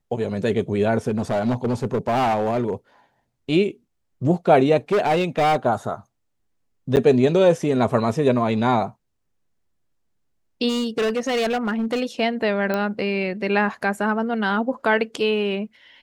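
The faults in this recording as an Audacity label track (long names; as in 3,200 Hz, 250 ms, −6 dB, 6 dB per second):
1.090000	2.740000	clipping −17 dBFS
4.920000	5.560000	clipping −15.5 dBFS
6.960000	6.970000	drop-out 9.4 ms
10.680000	12.010000	clipping −18.5 dBFS
12.740000	12.740000	click −11 dBFS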